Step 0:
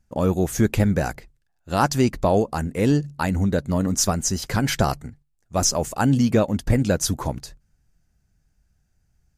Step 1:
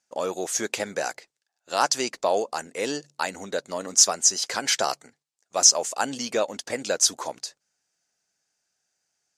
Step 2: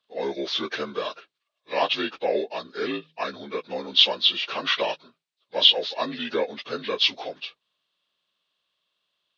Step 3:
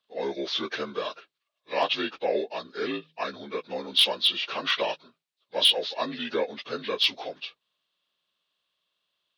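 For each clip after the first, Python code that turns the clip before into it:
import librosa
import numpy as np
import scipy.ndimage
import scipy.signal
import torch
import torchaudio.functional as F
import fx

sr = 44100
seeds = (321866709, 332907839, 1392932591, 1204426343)

y1 = scipy.signal.sosfilt(scipy.signal.cheby1(2, 1.0, [520.0, 6600.0], 'bandpass', fs=sr, output='sos'), x)
y1 = fx.high_shelf(y1, sr, hz=3200.0, db=11.5)
y1 = y1 * 10.0 ** (-2.5 / 20.0)
y2 = fx.partial_stretch(y1, sr, pct=81)
y2 = y2 * 10.0 ** (1.0 / 20.0)
y3 = np.clip(y2, -10.0 ** (-11.5 / 20.0), 10.0 ** (-11.5 / 20.0))
y3 = y3 * 10.0 ** (-2.0 / 20.0)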